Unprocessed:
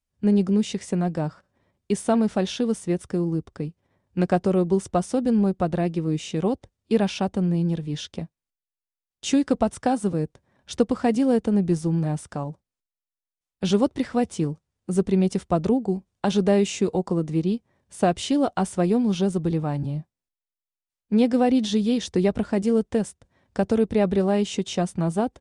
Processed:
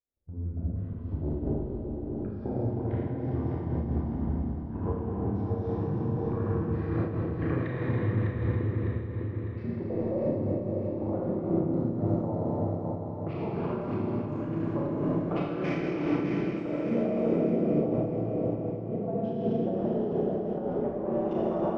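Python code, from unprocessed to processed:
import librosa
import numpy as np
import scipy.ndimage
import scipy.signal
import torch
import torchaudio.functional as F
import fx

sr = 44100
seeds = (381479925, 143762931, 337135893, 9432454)

p1 = fx.speed_glide(x, sr, from_pct=51, to_pct=96)
p2 = scipy.signal.sosfilt(scipy.signal.butter(2, 46.0, 'highpass', fs=sr, output='sos'), p1)
p3 = fx.peak_eq(p2, sr, hz=160.0, db=-8.0, octaves=0.72)
p4 = fx.level_steps(p3, sr, step_db=16)
p5 = fx.stretch_grains(p4, sr, factor=0.63, grain_ms=25.0)
p6 = fx.filter_lfo_lowpass(p5, sr, shape='saw_up', hz=0.12, low_hz=490.0, high_hz=1700.0, q=1.8)
p7 = p6 + fx.echo_feedback(p6, sr, ms=604, feedback_pct=46, wet_db=-6.0, dry=0)
p8 = fx.rev_schroeder(p7, sr, rt60_s=3.8, comb_ms=27, drr_db=-8.0)
y = fx.am_noise(p8, sr, seeds[0], hz=5.7, depth_pct=60)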